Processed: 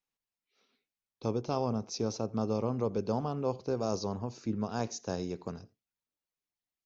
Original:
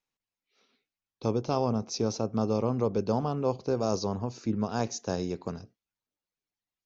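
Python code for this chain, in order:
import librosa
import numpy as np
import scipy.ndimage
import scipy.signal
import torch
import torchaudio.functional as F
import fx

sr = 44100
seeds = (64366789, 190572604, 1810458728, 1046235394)

y = x + 10.0 ** (-24.0 / 20.0) * np.pad(x, (int(85 * sr / 1000.0), 0))[:len(x)]
y = y * 10.0 ** (-4.0 / 20.0)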